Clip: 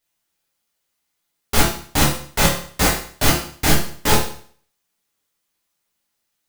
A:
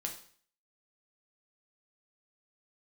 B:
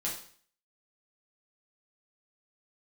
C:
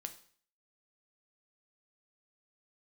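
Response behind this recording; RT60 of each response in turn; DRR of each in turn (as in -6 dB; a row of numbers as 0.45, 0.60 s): B; 0.50, 0.50, 0.50 s; 1.5, -5.5, 7.0 dB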